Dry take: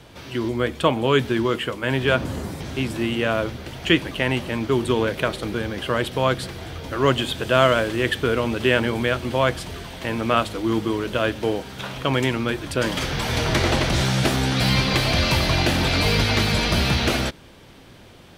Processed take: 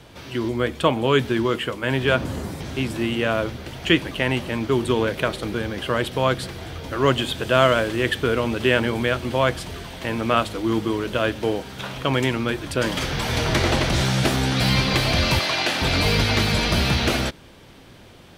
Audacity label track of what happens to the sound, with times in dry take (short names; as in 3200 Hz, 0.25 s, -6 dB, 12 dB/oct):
15.390000	15.820000	weighting filter A